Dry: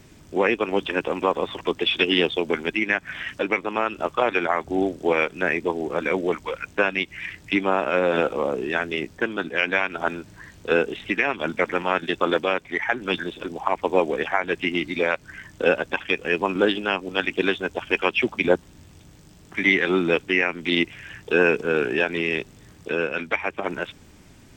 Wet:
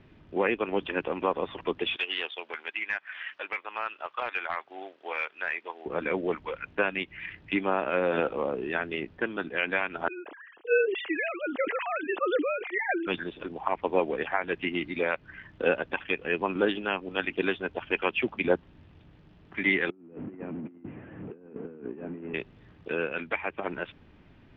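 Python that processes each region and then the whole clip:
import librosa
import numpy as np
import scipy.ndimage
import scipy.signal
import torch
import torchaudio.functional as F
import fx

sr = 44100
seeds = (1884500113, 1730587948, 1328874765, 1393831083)

y = fx.chain(x, sr, fx.highpass(hz=960.0, slope=12),
    fx.clip_hard(threshold_db=-16.0), at=(1.96, 5.86))
y = fx.chain(y, sr, fx.sine_speech(),
    fx.highpass(hz=240.0, slope=12),
    fx.sustainer(db_per_s=59.0), at=(10.08, 13.07))
y = fx.chain(y, sr, fx.delta_mod(bps=16000, step_db=-23.5),
    fx.bandpass_q(hz=240.0, q=2.1),
    fx.over_compress(threshold_db=-34.0, ratio=-0.5), at=(19.9, 22.34))
y = scipy.signal.sosfilt(scipy.signal.butter(4, 3200.0, 'lowpass', fs=sr, output='sos'), y)
y = fx.notch(y, sr, hz=2200.0, q=29.0)
y = y * 10.0 ** (-5.5 / 20.0)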